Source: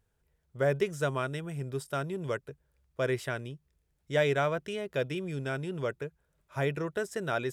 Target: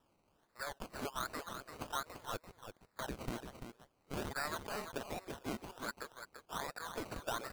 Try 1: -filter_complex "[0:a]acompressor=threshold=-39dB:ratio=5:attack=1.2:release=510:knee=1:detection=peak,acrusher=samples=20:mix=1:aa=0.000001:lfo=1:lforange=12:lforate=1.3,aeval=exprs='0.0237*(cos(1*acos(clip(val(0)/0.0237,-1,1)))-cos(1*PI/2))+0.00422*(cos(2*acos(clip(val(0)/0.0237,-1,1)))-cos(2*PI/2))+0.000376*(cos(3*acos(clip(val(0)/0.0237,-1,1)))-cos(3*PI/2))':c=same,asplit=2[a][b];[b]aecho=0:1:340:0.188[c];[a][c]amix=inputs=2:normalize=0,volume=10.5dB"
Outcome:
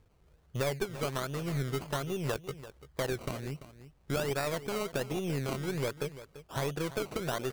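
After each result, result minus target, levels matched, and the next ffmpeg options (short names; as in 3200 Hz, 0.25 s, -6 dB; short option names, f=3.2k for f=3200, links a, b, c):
1000 Hz band -6.0 dB; echo-to-direct -6.5 dB
-filter_complex "[0:a]acompressor=threshold=-39dB:ratio=5:attack=1.2:release=510:knee=1:detection=peak,highpass=f=870:w=0.5412,highpass=f=870:w=1.3066,acrusher=samples=20:mix=1:aa=0.000001:lfo=1:lforange=12:lforate=1.3,aeval=exprs='0.0237*(cos(1*acos(clip(val(0)/0.0237,-1,1)))-cos(1*PI/2))+0.00422*(cos(2*acos(clip(val(0)/0.0237,-1,1)))-cos(2*PI/2))+0.000376*(cos(3*acos(clip(val(0)/0.0237,-1,1)))-cos(3*PI/2))':c=same,asplit=2[a][b];[b]aecho=0:1:340:0.188[c];[a][c]amix=inputs=2:normalize=0,volume=10.5dB"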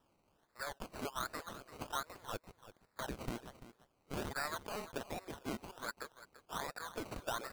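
echo-to-direct -6.5 dB
-filter_complex "[0:a]acompressor=threshold=-39dB:ratio=5:attack=1.2:release=510:knee=1:detection=peak,highpass=f=870:w=0.5412,highpass=f=870:w=1.3066,acrusher=samples=20:mix=1:aa=0.000001:lfo=1:lforange=12:lforate=1.3,aeval=exprs='0.0237*(cos(1*acos(clip(val(0)/0.0237,-1,1)))-cos(1*PI/2))+0.00422*(cos(2*acos(clip(val(0)/0.0237,-1,1)))-cos(2*PI/2))+0.000376*(cos(3*acos(clip(val(0)/0.0237,-1,1)))-cos(3*PI/2))':c=same,asplit=2[a][b];[b]aecho=0:1:340:0.398[c];[a][c]amix=inputs=2:normalize=0,volume=10.5dB"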